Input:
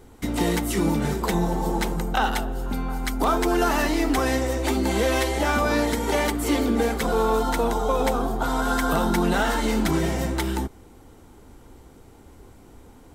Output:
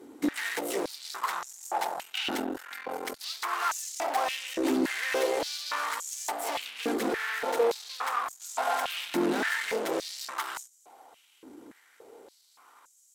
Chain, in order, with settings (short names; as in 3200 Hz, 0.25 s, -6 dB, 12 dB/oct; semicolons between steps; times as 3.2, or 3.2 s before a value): tube stage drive 29 dB, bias 0.7; stepped high-pass 3.5 Hz 300–6800 Hz